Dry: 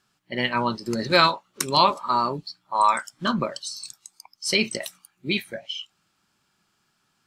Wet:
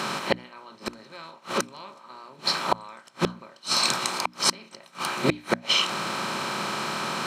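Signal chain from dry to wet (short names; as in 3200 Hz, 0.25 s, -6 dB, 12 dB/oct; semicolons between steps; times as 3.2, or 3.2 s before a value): per-bin compression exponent 0.4; HPF 110 Hz 24 dB/oct; high shelf 8500 Hz -8.5 dB; flipped gate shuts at -12 dBFS, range -33 dB; notches 60/120/180/240/300 Hz; gain +5 dB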